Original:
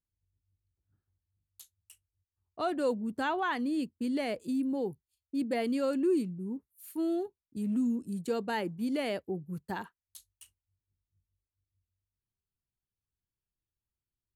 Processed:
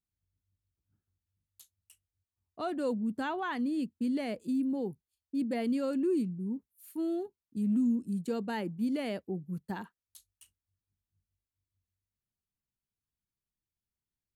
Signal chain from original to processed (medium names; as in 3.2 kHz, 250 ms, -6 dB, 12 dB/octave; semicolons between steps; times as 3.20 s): peaking EQ 210 Hz +7 dB 0.92 oct; trim -4 dB